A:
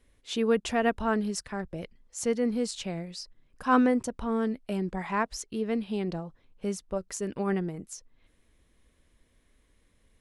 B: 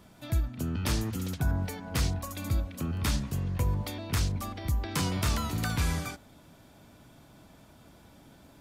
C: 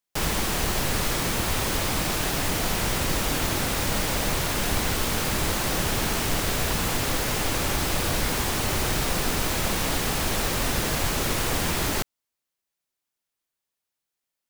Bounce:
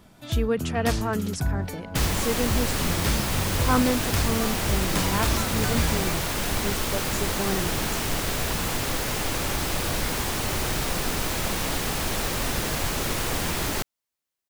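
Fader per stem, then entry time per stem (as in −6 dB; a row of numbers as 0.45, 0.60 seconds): −0.5, +2.0, −1.5 decibels; 0.00, 0.00, 1.80 seconds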